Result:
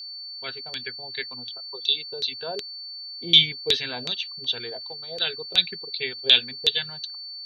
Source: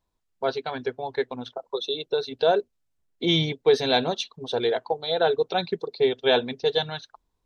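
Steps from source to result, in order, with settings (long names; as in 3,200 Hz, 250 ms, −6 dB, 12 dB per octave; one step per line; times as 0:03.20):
auto-filter low-pass saw down 2.7 Hz 500–4,400 Hz
steady tone 4,500 Hz −41 dBFS
drawn EQ curve 130 Hz 0 dB, 760 Hz −13 dB, 2,800 Hz +13 dB
level −7 dB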